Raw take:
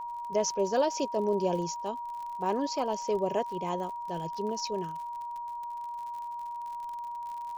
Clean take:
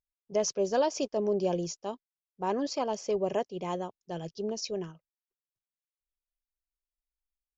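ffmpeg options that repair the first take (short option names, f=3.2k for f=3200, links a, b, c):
-af "adeclick=t=4,bandreject=f=950:w=30,agate=range=-21dB:threshold=-30dB"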